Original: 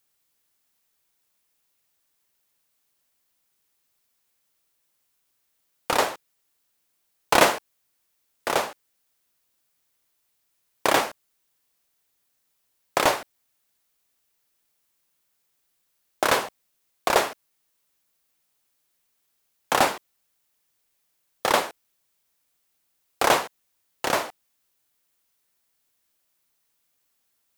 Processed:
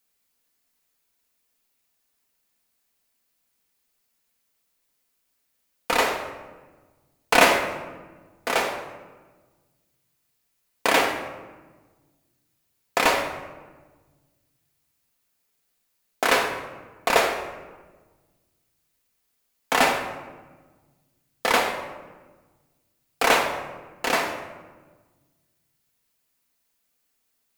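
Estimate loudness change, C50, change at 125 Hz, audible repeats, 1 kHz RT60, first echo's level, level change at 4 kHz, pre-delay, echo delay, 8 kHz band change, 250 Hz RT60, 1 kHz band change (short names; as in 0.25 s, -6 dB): +1.0 dB, 6.0 dB, -0.5 dB, none, 1.2 s, none, +1.5 dB, 4 ms, none, -0.5 dB, 1.8 s, +0.5 dB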